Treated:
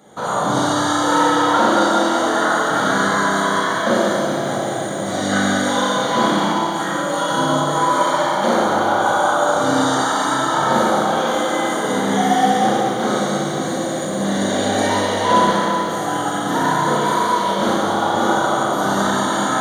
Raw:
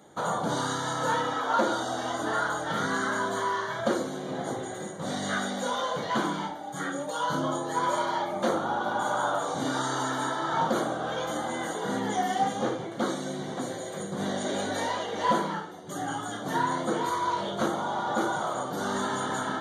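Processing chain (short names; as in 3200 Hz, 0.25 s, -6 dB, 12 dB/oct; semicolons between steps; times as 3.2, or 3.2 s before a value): Schroeder reverb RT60 2.4 s, combs from 30 ms, DRR -6.5 dB; lo-fi delay 0.192 s, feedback 80%, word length 8-bit, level -12 dB; gain +4 dB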